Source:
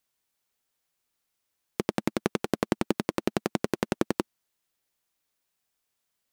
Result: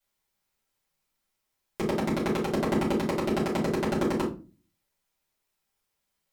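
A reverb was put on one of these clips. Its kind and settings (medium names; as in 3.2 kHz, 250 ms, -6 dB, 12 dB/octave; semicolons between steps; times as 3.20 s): simulated room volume 170 m³, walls furnished, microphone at 5.1 m; trim -9 dB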